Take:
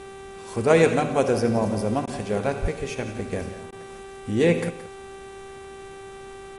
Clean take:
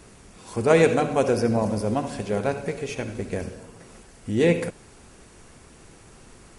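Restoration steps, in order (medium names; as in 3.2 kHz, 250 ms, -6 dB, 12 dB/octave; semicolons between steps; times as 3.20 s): de-hum 390.2 Hz, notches 10; 2.61–2.73 s: high-pass 140 Hz 24 dB/octave; interpolate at 2.06/3.71 s, 13 ms; inverse comb 173 ms -13.5 dB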